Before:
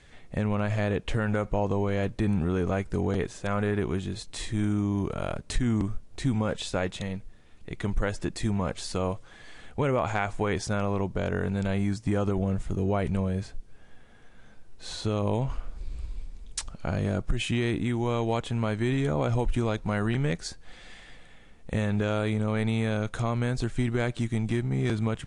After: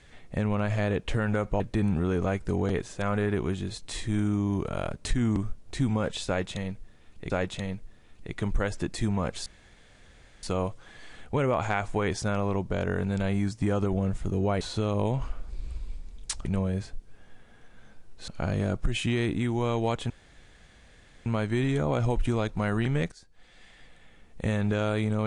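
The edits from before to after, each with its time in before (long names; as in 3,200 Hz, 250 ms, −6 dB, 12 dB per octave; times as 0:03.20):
0:01.60–0:02.05: remove
0:06.72–0:07.75: repeat, 2 plays
0:08.88: splice in room tone 0.97 s
0:13.06–0:14.89: move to 0:16.73
0:18.55: splice in room tone 1.16 s
0:20.41–0:21.71: fade in, from −18.5 dB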